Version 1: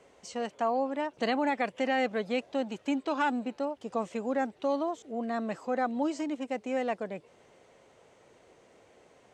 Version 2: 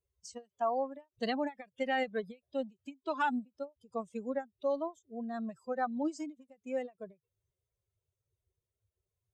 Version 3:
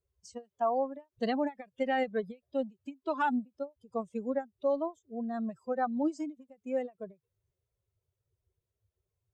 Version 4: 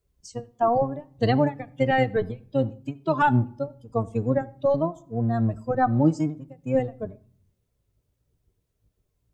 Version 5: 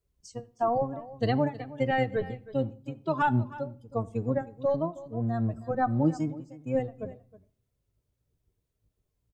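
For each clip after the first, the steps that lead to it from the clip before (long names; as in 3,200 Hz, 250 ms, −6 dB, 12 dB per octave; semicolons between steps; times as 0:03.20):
spectral dynamics exaggerated over time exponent 2; every ending faded ahead of time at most 350 dB per second
tilt shelving filter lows +4 dB, about 1,500 Hz
sub-octave generator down 1 octave, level 0 dB; convolution reverb RT60 0.55 s, pre-delay 7 ms, DRR 14 dB; level +8 dB
single-tap delay 316 ms −17.5 dB; level −5 dB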